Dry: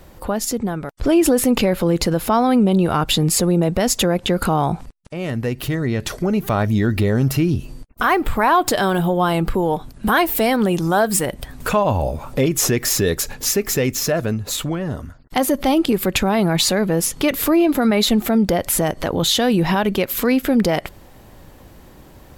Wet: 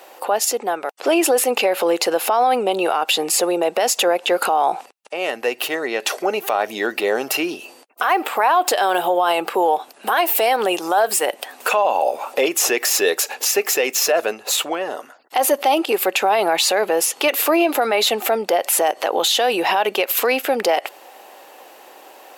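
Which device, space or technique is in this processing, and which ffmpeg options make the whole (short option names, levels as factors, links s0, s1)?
laptop speaker: -af "highpass=f=420:w=0.5412,highpass=f=420:w=1.3066,equalizer=f=780:t=o:w=0.31:g=7,equalizer=f=2700:t=o:w=0.22:g=7.5,alimiter=limit=0.224:level=0:latency=1:release=57,volume=1.78"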